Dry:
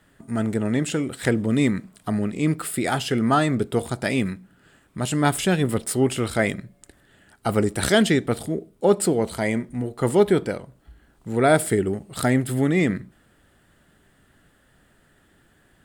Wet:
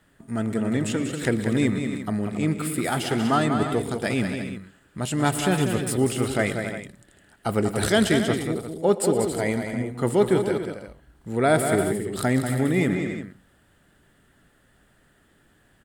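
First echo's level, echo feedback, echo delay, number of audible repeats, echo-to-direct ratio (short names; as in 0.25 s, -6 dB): -16.5 dB, no steady repeat, 0.118 s, 4, -4.5 dB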